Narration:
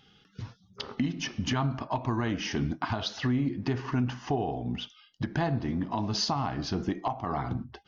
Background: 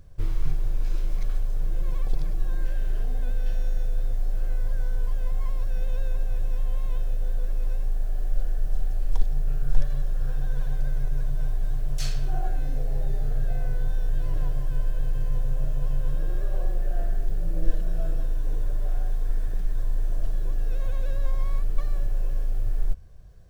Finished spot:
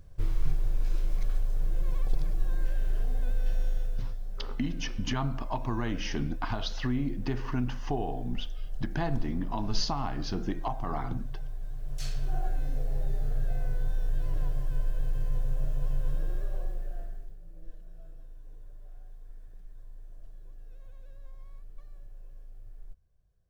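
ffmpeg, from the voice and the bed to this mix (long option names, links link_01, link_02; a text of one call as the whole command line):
ffmpeg -i stem1.wav -i stem2.wav -filter_complex "[0:a]adelay=3600,volume=-3dB[link_01];[1:a]volume=5dB,afade=type=out:start_time=3.61:duration=0.59:silence=0.354813,afade=type=in:start_time=11.75:duration=0.57:silence=0.421697,afade=type=out:start_time=16.15:duration=1.22:silence=0.125893[link_02];[link_01][link_02]amix=inputs=2:normalize=0" out.wav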